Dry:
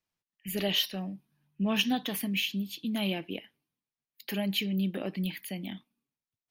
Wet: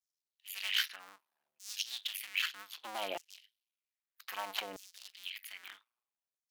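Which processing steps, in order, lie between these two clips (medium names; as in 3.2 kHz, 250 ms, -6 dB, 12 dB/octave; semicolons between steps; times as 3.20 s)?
cycle switcher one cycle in 2, muted; LFO high-pass saw down 0.63 Hz 560–6500 Hz; trim -4 dB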